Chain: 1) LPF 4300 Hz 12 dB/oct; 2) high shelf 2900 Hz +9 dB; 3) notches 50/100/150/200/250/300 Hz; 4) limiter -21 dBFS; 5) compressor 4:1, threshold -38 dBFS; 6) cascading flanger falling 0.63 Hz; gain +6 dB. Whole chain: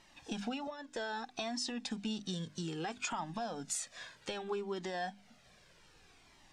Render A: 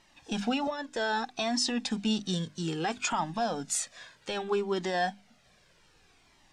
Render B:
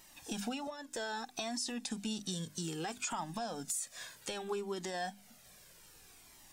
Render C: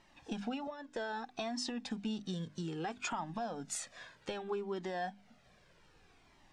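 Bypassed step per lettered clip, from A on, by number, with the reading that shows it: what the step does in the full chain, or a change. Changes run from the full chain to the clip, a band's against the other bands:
5, mean gain reduction 5.5 dB; 1, 8 kHz band +3.5 dB; 2, 4 kHz band -3.5 dB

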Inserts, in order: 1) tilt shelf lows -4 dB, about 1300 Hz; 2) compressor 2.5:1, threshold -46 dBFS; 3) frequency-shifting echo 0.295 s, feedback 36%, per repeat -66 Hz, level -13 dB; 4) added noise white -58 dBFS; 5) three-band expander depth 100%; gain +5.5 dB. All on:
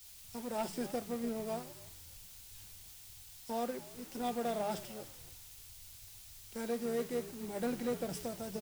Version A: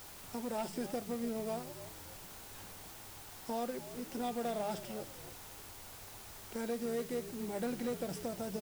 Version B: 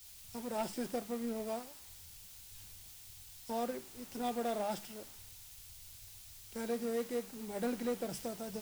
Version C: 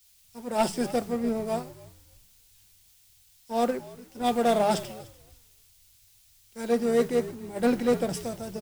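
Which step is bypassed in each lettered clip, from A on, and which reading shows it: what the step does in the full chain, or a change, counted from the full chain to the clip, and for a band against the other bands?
5, crest factor change -1.5 dB; 3, 125 Hz band -3.0 dB; 2, mean gain reduction 5.0 dB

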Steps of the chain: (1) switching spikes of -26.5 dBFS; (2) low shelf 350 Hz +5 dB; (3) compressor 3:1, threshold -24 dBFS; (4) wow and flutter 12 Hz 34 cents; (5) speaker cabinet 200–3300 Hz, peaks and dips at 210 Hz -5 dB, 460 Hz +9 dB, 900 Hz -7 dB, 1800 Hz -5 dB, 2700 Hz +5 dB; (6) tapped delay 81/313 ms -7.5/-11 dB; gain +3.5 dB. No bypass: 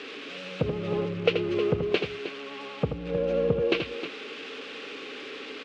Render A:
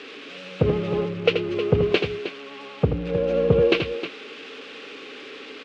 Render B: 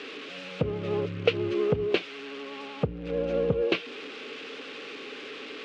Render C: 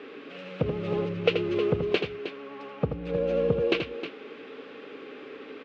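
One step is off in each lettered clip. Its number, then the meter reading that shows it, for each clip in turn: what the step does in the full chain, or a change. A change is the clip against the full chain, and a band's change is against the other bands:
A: 3, mean gain reduction 2.0 dB; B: 6, echo-to-direct -6.0 dB to none; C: 1, distortion -11 dB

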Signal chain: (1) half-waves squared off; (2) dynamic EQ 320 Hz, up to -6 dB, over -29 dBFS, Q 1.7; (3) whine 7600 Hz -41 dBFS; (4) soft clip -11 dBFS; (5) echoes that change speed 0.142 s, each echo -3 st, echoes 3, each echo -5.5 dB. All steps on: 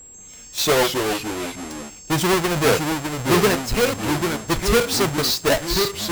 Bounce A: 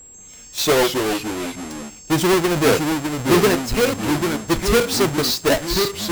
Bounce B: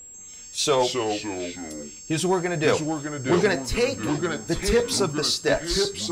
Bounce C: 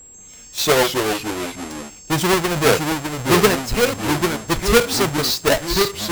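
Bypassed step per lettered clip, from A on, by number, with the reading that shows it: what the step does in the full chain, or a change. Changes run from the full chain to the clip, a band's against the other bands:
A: 2, 250 Hz band +3.0 dB; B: 1, distortion -6 dB; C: 4, distortion -15 dB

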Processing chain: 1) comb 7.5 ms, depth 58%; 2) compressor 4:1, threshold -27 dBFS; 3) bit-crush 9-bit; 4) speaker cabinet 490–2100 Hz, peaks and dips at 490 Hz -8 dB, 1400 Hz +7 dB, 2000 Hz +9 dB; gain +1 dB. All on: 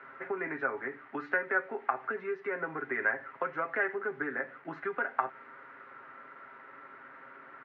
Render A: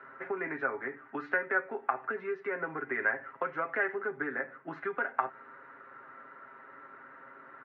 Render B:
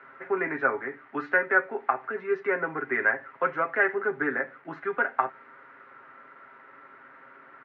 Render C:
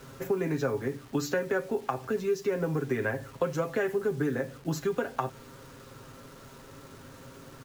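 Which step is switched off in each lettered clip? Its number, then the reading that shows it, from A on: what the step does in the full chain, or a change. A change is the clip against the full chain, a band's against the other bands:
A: 3, distortion -26 dB; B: 2, mean gain reduction 3.0 dB; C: 4, 125 Hz band +18.0 dB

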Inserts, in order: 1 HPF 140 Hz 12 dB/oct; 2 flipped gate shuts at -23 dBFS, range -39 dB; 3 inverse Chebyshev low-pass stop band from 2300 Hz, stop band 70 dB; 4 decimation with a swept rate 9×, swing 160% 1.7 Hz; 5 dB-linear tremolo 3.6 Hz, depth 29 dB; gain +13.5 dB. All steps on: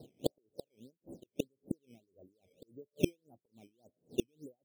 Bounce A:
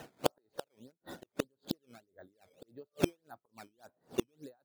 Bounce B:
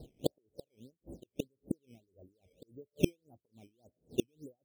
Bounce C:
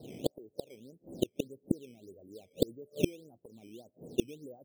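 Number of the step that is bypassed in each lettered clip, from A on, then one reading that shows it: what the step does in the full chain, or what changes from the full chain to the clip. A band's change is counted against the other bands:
3, crest factor change +2.0 dB; 1, 125 Hz band +2.0 dB; 5, 2 kHz band -2.0 dB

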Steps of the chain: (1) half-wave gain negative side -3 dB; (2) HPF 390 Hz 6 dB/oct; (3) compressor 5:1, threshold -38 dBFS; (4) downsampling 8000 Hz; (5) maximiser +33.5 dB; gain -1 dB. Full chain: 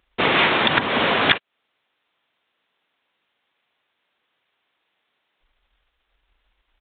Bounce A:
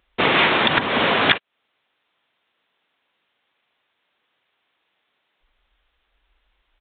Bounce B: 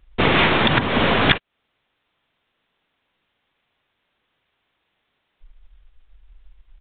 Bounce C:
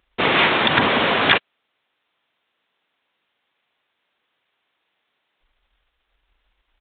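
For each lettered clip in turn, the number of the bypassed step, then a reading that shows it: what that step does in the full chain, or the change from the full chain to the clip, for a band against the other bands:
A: 1, distortion -15 dB; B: 2, 125 Hz band +9.0 dB; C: 3, mean gain reduction 2.0 dB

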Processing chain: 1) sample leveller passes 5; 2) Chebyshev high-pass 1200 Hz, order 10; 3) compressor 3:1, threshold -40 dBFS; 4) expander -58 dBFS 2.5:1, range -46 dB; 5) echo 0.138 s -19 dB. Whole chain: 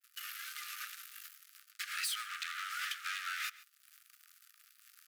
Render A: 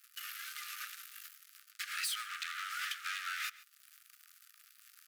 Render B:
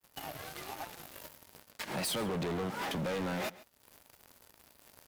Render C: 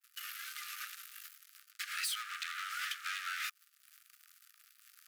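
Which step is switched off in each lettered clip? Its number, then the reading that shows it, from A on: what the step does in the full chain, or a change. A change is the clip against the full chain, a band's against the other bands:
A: 4, momentary loudness spread change +7 LU; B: 2, 1 kHz band +5.5 dB; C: 5, momentary loudness spread change -1 LU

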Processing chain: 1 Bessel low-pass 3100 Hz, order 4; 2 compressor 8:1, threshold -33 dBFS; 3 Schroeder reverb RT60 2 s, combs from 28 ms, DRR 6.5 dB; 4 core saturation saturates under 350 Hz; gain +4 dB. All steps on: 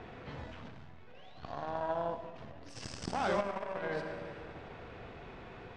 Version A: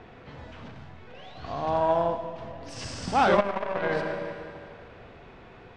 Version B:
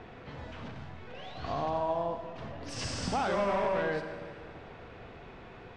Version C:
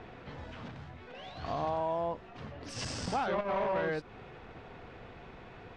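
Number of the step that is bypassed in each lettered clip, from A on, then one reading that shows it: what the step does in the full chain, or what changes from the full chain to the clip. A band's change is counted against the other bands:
2, mean gain reduction 2.5 dB; 4, crest factor change -3.0 dB; 3, loudness change +4.0 LU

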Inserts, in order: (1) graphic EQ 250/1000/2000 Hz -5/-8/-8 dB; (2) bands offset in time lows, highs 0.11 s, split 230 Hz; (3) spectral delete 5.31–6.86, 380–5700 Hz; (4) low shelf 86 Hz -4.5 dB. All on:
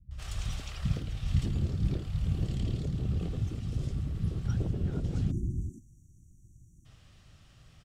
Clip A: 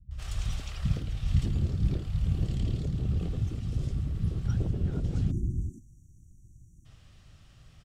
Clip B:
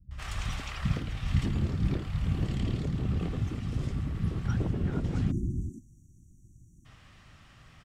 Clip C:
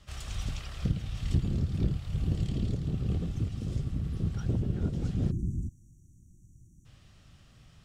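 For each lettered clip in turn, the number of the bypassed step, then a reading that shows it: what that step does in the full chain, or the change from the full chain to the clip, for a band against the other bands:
4, 125 Hz band +2.0 dB; 1, loudness change +1.5 LU; 2, 250 Hz band +2.0 dB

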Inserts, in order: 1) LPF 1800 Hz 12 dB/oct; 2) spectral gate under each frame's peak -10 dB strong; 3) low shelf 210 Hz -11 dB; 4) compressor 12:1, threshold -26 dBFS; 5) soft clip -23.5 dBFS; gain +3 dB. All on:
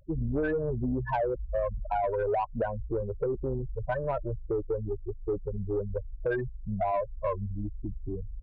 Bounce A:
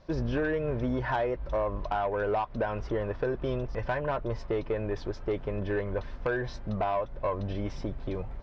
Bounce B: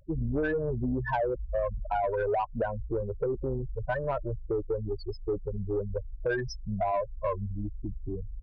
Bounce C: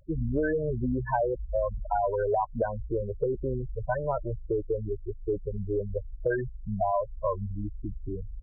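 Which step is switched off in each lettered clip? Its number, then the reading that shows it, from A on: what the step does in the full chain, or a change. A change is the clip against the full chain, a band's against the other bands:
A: 2, 2 kHz band +4.5 dB; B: 1, 2 kHz band +3.0 dB; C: 5, distortion -19 dB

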